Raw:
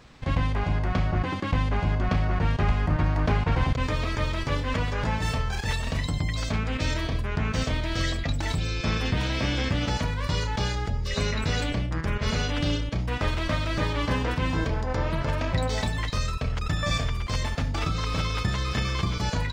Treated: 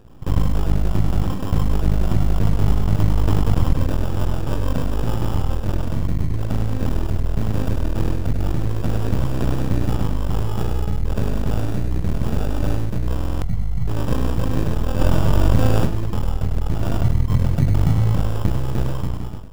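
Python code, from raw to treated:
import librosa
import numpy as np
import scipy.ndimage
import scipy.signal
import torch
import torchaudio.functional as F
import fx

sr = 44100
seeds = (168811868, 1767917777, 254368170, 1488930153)

y = fx.fade_out_tail(x, sr, length_s=0.7)
y = np.maximum(y, 0.0)
y = fx.spec_box(y, sr, start_s=13.26, length_s=0.62, low_hz=220.0, high_hz=4800.0, gain_db=-29)
y = fx.peak_eq(y, sr, hz=130.0, db=10.0, octaves=1.3, at=(17.02, 18.15))
y = fx.sample_hold(y, sr, seeds[0], rate_hz=2100.0, jitter_pct=0)
y = fx.low_shelf(y, sr, hz=460.0, db=11.5)
y = y + 10.0 ** (-6.0 / 20.0) * np.pad(y, (int(101 * sr / 1000.0), 0))[:len(y)]
y = fx.buffer_glitch(y, sr, at_s=(13.14,), block=2048, repeats=5)
y = fx.env_flatten(y, sr, amount_pct=70, at=(14.99, 15.85), fade=0.02)
y = F.gain(torch.from_numpy(y), -1.0).numpy()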